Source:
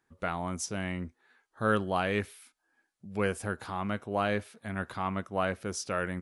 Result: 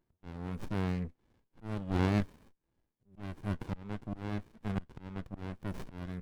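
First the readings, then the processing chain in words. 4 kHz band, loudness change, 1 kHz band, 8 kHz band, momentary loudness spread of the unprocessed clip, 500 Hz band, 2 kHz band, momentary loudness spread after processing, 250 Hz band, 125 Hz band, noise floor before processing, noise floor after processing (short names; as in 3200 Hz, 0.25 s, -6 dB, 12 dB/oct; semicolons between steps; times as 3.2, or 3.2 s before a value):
-9.0 dB, -5.0 dB, -11.5 dB, under -20 dB, 8 LU, -10.5 dB, -12.5 dB, 13 LU, -1.5 dB, +1.5 dB, -80 dBFS, -84 dBFS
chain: auto swell 0.471 s; running maximum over 65 samples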